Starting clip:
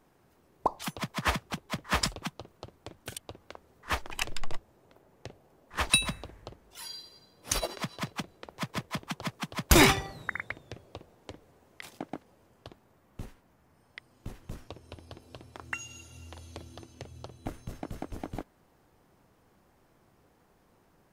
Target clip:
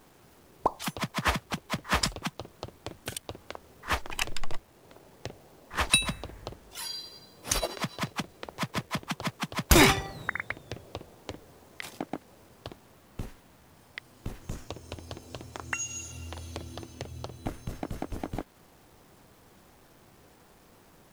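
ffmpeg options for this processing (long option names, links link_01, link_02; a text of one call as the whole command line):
ffmpeg -i in.wav -filter_complex "[0:a]asettb=1/sr,asplit=3[link_01][link_02][link_03];[link_01]atrim=end=14.414[link_04];[link_02]atrim=start=14.41:end=16.12,asetpts=PTS-STARTPTS,afade=type=in:duration=0.004:curve=qsin,afade=type=out:start_time=1.706:duration=0.004:curve=qsin,equalizer=frequency=6800:width=2.7:gain=9[link_05];[link_03]atrim=start=16.116[link_06];[link_04][link_05]acrossfade=duration=0.004:curve1=hsin:curve2=qsin[link_07];[link_07][link_06]acrossfade=duration=0.004:curve1=qsin:curve2=hsin,asplit=2[link_08][link_09];[link_09]acompressor=threshold=-42dB:ratio=6,volume=1.5dB[link_10];[link_08][link_10]amix=inputs=2:normalize=0,acrusher=bits=9:mix=0:aa=0.000001" out.wav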